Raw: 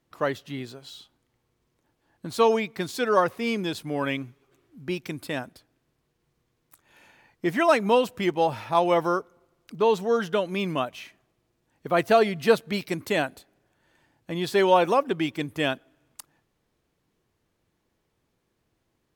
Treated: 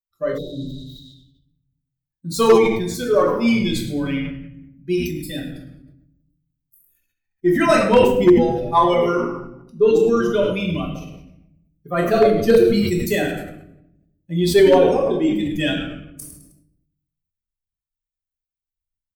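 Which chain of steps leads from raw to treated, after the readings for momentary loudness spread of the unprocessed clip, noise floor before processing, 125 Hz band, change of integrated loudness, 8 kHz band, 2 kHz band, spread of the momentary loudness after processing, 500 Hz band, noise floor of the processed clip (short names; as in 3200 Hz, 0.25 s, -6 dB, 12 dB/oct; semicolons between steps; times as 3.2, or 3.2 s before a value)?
16 LU, -75 dBFS, +9.0 dB, +7.0 dB, +8.0 dB, +3.0 dB, 18 LU, +7.5 dB, under -85 dBFS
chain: per-bin expansion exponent 2; high shelf 4000 Hz +11.5 dB; added harmonics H 4 -28 dB, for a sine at -8 dBFS; in parallel at -2.5 dB: compressor 10:1, threshold -35 dBFS, peak gain reduction 20 dB; on the sum: bell 420 Hz +8.5 dB 2.6 oct; on a send: frequency-shifting echo 0.105 s, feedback 34%, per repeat -110 Hz, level -13 dB; on the sum: rotary speaker horn 0.75 Hz; shoebox room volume 220 m³, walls mixed, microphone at 1.2 m; wavefolder -4.5 dBFS; spectral repair 0.4–1.03, 780–10000 Hz after; sustainer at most 57 dB/s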